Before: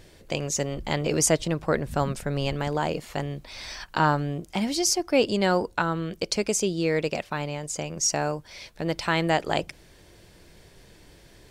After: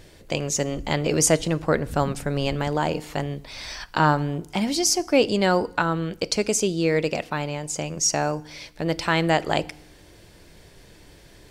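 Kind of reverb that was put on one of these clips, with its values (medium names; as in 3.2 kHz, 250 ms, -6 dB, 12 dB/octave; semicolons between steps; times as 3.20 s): FDN reverb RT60 0.75 s, low-frequency decay 1.25×, high-frequency decay 0.9×, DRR 18 dB; trim +2.5 dB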